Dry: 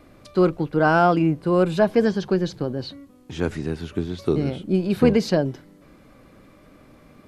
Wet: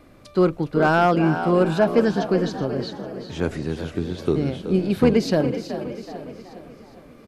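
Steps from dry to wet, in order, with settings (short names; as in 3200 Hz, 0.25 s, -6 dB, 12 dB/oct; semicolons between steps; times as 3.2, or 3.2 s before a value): frequency-shifting echo 0.375 s, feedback 41%, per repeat +64 Hz, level -11.5 dB; hard clip -8.5 dBFS, distortion -24 dB; feedback echo 0.411 s, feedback 53%, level -13.5 dB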